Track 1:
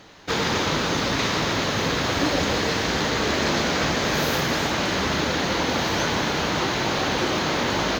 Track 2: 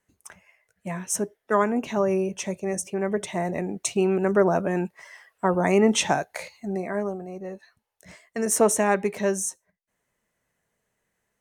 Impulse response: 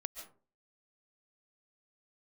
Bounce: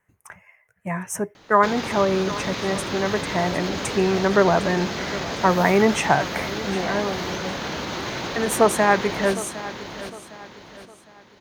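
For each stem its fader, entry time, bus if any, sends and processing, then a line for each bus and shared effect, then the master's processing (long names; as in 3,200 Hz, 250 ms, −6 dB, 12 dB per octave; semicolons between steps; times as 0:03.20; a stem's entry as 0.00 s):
−3.0 dB, 1.35 s, no send, echo send −6 dB, brickwall limiter −18.5 dBFS, peak gain reduction 9 dB
+1.5 dB, 0.00 s, no send, echo send −16 dB, graphic EQ with 10 bands 125 Hz +8 dB, 250 Hz −4 dB, 1,000 Hz +5 dB, 2,000 Hz +7 dB, 4,000 Hz −11 dB, 8,000 Hz −4 dB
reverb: not used
echo: repeating echo 758 ms, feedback 37%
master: no processing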